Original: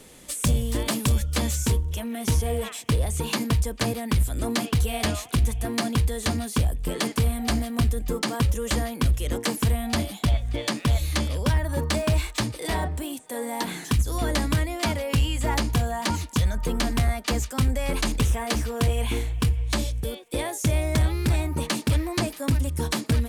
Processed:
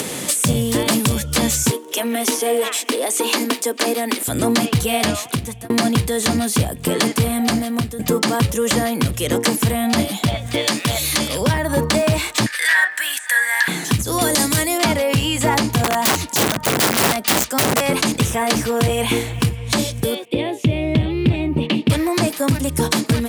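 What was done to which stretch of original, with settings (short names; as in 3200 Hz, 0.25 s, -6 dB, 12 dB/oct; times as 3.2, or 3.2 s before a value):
1.7–4.28 Chebyshev high-pass 250 Hz, order 5
4.94–5.7 fade out
7.36–7.99 fade out, to -14.5 dB
10.46–11.41 tilt +1.5 dB/oct
12.46–13.68 resonant high-pass 1700 Hz, resonance Q 14
14.21–14.78 tone controls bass -3 dB, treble +12 dB
15.84–17.81 wrapped overs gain 20.5 dB
20.25–21.9 EQ curve 330 Hz 0 dB, 1500 Hz -16 dB, 2900 Hz 0 dB, 6200 Hz -26 dB
whole clip: HPF 110 Hz 24 dB/oct; upward compressor, threshold -25 dBFS; maximiser +15.5 dB; gain -5 dB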